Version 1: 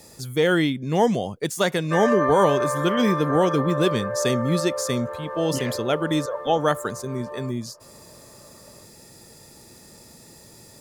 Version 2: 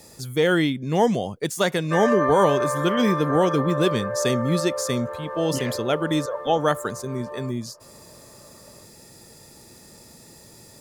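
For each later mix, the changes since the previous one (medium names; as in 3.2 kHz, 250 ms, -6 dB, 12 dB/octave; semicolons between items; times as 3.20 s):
no change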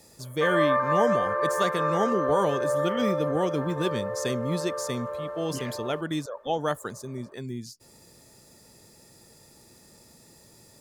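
speech -6.5 dB; background: entry -1.50 s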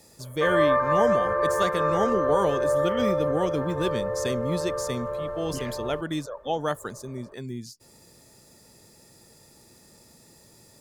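background: remove high-pass 560 Hz 6 dB/octave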